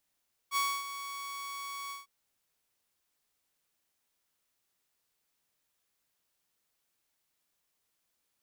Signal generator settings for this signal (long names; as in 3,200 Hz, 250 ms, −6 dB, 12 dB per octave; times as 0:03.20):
note with an ADSR envelope saw 1,120 Hz, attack 56 ms, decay 266 ms, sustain −12 dB, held 1.40 s, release 152 ms −24 dBFS